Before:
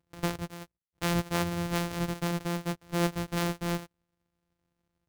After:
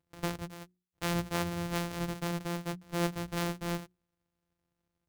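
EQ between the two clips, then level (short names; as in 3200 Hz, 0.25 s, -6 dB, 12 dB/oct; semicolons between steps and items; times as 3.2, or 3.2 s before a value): notches 60/120/180/240/300/360 Hz; -3.0 dB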